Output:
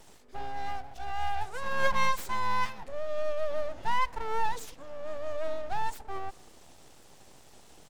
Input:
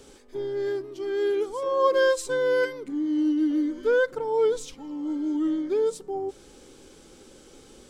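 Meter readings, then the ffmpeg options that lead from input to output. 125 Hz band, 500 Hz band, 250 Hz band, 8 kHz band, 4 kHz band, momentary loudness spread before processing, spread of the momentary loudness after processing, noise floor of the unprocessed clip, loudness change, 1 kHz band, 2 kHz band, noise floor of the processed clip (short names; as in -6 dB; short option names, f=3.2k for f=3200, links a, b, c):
n/a, -12.5 dB, -23.5 dB, -5.0 dB, -2.5 dB, 10 LU, 11 LU, -52 dBFS, -8.0 dB, +3.0 dB, -3.0 dB, -54 dBFS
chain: -filter_complex "[0:a]asplit=2[a][b];[b]adelay=192.4,volume=-25dB,highshelf=f=4k:g=-4.33[c];[a][c]amix=inputs=2:normalize=0,aeval=exprs='abs(val(0))':c=same,volume=-2.5dB"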